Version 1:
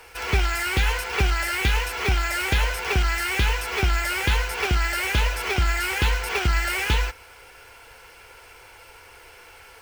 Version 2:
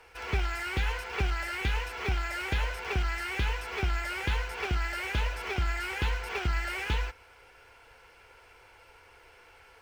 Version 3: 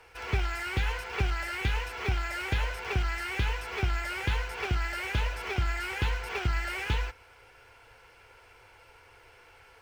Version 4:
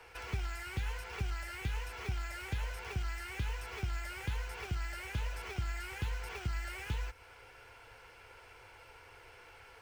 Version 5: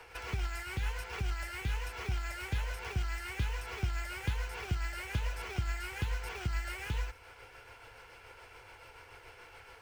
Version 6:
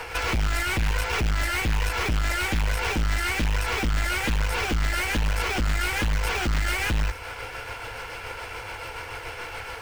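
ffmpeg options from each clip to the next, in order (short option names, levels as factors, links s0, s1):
-af "lowpass=f=3500:p=1,volume=0.422"
-af "equalizer=f=110:w=4.3:g=7.5"
-filter_complex "[0:a]acrossover=split=130|2700|6000[s0][s1][s2][s3];[s0]acompressor=threshold=0.0178:ratio=4[s4];[s1]acompressor=threshold=0.00501:ratio=4[s5];[s2]acompressor=threshold=0.00158:ratio=4[s6];[s3]acompressor=threshold=0.00178:ratio=4[s7];[s4][s5][s6][s7]amix=inputs=4:normalize=0"
-af "tremolo=f=7:d=0.36,volume=1.58"
-af "aeval=exprs='0.0944*sin(PI/2*3.16*val(0)/0.0944)':c=same,bandreject=f=390:w=12,aeval=exprs='(tanh(20*val(0)+0.4)-tanh(0.4))/20':c=same,volume=1.88"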